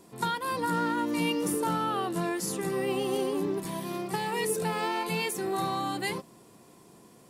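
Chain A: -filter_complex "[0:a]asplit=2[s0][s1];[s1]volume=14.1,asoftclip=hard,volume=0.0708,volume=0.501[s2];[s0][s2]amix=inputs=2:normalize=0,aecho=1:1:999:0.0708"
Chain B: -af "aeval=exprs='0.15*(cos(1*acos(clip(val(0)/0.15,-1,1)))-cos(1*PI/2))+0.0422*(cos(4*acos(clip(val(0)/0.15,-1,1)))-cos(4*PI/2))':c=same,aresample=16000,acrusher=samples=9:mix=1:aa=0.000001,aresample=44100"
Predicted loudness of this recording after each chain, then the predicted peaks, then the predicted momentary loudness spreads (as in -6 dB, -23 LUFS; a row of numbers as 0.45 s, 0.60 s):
-26.5 LUFS, -29.5 LUFS; -15.0 dBFS, -13.0 dBFS; 4 LU, 4 LU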